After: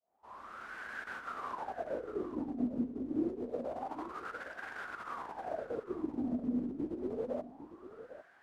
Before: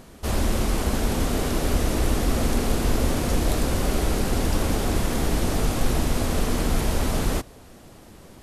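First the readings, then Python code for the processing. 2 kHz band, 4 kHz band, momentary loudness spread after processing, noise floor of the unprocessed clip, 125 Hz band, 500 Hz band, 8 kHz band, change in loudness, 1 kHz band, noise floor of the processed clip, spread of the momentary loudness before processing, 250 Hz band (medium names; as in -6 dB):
-11.5 dB, -29.0 dB, 14 LU, -47 dBFS, -29.0 dB, -11.5 dB, under -35 dB, -14.5 dB, -11.5 dB, -62 dBFS, 1 LU, -10.5 dB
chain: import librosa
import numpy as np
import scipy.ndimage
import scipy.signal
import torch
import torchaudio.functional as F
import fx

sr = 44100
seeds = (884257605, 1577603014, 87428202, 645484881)

y = fx.fade_in_head(x, sr, length_s=1.1)
y = fx.over_compress(y, sr, threshold_db=-23.0, ratio=-0.5)
y = fx.wah_lfo(y, sr, hz=0.27, low_hz=250.0, high_hz=1600.0, q=8.5)
y = y + 10.0 ** (-12.5 / 20.0) * np.pad(y, (int(802 * sr / 1000.0), 0))[:len(y)]
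y = y * librosa.db_to_amplitude(1.0)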